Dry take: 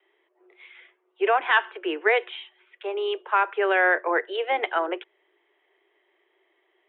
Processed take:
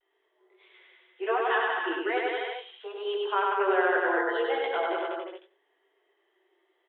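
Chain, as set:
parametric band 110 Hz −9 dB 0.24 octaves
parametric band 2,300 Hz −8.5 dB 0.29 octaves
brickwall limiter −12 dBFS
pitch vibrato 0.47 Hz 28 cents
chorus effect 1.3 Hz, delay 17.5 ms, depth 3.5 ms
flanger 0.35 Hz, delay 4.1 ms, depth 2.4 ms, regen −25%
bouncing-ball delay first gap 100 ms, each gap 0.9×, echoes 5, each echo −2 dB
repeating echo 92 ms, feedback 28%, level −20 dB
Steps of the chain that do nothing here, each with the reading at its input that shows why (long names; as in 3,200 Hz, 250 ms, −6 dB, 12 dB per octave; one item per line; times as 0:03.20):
parametric band 110 Hz: nothing at its input below 290 Hz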